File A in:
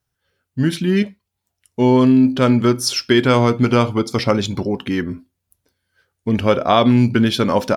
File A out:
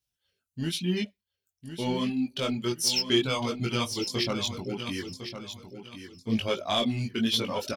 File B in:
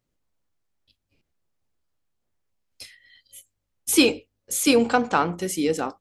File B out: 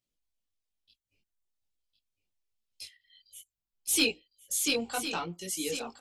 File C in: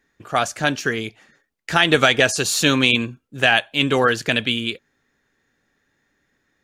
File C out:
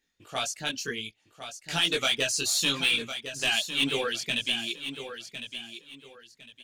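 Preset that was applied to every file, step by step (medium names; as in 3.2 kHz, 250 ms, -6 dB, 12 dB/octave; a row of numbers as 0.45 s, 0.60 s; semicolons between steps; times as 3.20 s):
reverb removal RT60 0.95 s; resonant high shelf 2.2 kHz +8.5 dB, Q 1.5; saturation -4.5 dBFS; chorus voices 4, 0.98 Hz, delay 20 ms, depth 3 ms; feedback delay 1056 ms, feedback 27%, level -10 dB; trim -9 dB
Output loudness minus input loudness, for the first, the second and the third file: -12.0 LU, -8.5 LU, -9.0 LU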